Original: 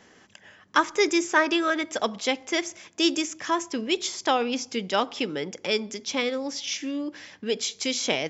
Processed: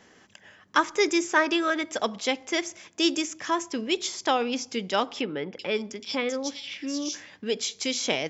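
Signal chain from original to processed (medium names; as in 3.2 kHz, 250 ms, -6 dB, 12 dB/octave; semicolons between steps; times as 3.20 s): 5.21–7.36 s: bands offset in time lows, highs 380 ms, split 3.6 kHz; trim -1 dB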